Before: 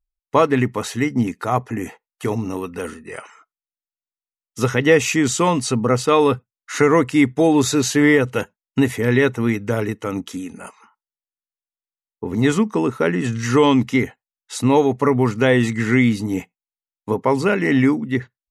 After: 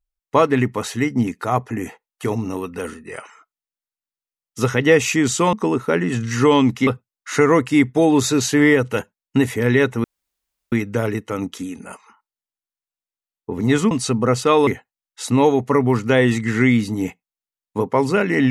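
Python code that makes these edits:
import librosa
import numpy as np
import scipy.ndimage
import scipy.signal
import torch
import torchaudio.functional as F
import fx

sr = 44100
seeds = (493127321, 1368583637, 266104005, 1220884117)

y = fx.edit(x, sr, fx.swap(start_s=5.53, length_s=0.76, other_s=12.65, other_length_s=1.34),
    fx.insert_room_tone(at_s=9.46, length_s=0.68), tone=tone)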